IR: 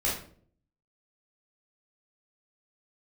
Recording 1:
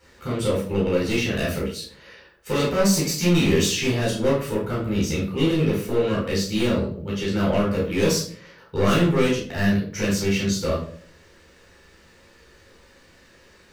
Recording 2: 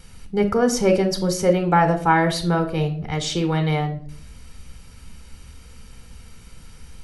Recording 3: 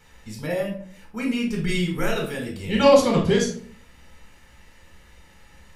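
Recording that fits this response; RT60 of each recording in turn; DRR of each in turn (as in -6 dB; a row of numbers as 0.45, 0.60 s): 1; 0.50, 0.55, 0.50 s; -7.0, 6.5, -1.0 dB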